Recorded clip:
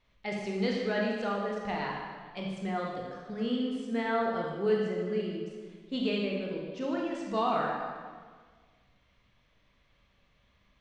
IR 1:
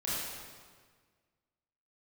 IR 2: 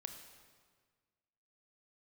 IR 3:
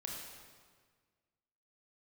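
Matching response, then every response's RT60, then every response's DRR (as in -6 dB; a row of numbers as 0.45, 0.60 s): 3; 1.6, 1.6, 1.6 s; -9.5, 5.5, -2.0 dB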